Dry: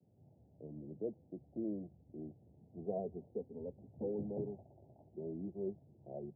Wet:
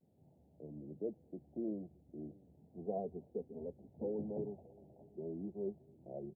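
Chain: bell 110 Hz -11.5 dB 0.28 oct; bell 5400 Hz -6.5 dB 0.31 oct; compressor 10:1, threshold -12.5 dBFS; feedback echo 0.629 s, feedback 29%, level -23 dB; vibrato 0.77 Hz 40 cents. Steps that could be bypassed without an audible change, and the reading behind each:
bell 5400 Hz: input band ends at 850 Hz; compressor, threshold -12.5 dBFS: input peak -26.0 dBFS

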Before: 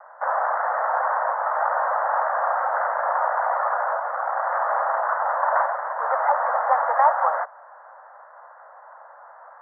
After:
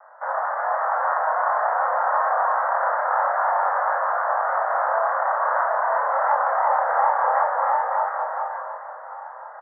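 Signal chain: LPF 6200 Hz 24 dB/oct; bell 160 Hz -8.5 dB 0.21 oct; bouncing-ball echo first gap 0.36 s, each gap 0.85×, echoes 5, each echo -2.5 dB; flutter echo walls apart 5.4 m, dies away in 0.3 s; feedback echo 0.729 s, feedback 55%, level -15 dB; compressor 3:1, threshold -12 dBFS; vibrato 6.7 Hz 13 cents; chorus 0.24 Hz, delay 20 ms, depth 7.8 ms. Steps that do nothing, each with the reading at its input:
LPF 6200 Hz: input band ends at 2000 Hz; bell 160 Hz: input band starts at 430 Hz

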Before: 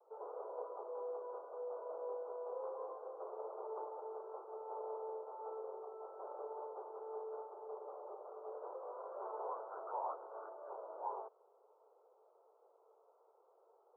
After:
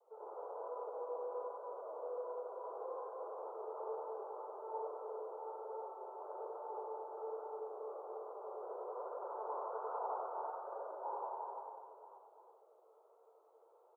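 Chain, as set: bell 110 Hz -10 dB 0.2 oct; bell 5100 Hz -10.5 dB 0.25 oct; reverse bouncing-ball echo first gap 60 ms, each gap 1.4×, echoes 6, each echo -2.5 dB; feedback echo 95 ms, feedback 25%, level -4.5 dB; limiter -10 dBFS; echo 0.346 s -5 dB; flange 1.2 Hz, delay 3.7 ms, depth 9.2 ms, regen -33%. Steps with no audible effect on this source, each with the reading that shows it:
bell 110 Hz: input band starts at 320 Hz; bell 5100 Hz: input band ends at 1400 Hz; limiter -10 dBFS: input peak -25.5 dBFS

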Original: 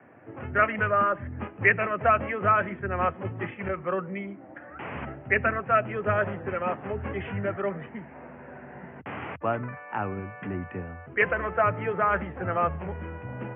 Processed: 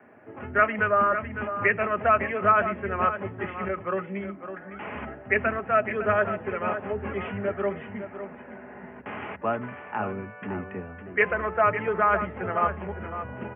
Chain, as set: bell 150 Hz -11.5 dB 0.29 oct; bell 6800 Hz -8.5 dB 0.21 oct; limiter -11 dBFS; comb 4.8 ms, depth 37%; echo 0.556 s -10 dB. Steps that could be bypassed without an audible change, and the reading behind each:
bell 6800 Hz: input band ends at 2900 Hz

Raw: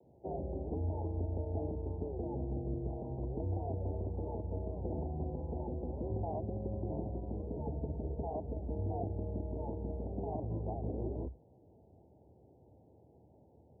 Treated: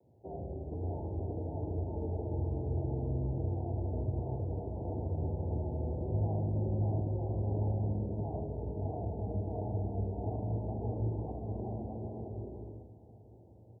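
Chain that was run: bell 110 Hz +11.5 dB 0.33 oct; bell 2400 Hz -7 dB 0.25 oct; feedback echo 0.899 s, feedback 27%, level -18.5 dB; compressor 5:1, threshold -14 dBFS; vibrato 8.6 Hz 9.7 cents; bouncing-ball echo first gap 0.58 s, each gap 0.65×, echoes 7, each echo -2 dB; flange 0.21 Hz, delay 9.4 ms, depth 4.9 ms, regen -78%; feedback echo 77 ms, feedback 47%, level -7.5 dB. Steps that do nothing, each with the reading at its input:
bell 2400 Hz: input band ends at 850 Hz; compressor, threshold -14 dBFS: input peak -21.5 dBFS

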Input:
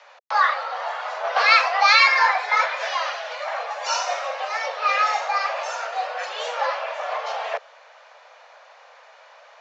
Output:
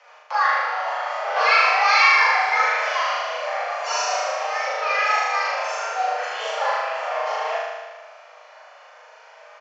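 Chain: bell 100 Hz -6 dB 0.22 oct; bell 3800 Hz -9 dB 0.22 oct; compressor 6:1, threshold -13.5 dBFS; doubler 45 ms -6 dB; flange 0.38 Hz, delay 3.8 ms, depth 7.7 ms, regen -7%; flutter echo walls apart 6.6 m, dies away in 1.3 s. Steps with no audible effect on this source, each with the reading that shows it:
bell 100 Hz: input band starts at 400 Hz

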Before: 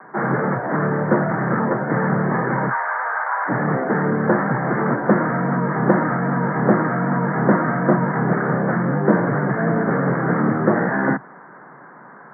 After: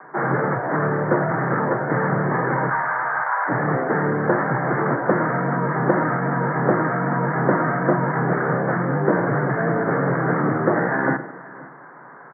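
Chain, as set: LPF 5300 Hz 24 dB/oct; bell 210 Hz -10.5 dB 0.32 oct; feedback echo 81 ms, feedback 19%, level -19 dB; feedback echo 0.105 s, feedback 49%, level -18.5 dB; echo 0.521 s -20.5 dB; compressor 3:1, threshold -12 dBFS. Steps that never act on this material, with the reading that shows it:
LPF 5300 Hz: input band ends at 2000 Hz

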